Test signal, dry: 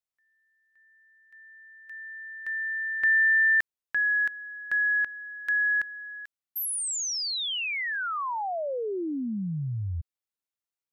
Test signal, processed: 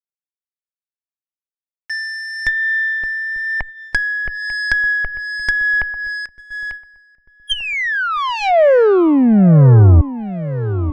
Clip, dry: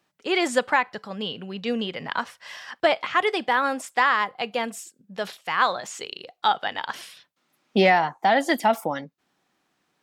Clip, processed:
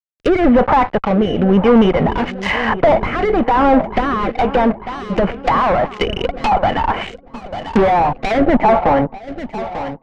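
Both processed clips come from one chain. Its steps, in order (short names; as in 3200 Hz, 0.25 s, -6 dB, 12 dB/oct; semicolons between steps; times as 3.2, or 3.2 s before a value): rippled Chebyshev low-pass 3100 Hz, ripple 9 dB; fuzz box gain 43 dB, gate -52 dBFS; added harmonics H 2 -20 dB, 4 -35 dB, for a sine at -10 dBFS; low shelf 75 Hz +11 dB; darkening echo 0.894 s, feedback 63%, low-pass 1200 Hz, level -13 dB; rotary speaker horn 1 Hz; treble ducked by the level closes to 1200 Hz, closed at -16 dBFS; gate -34 dBFS, range -11 dB; gain +5.5 dB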